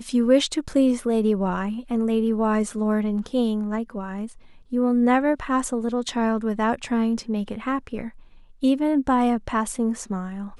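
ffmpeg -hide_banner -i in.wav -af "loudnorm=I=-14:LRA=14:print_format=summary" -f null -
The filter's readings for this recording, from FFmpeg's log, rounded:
Input Integrated:    -23.5 LUFS
Input True Peak:      -6.3 dBTP
Input LRA:             2.9 LU
Input Threshold:     -33.9 LUFS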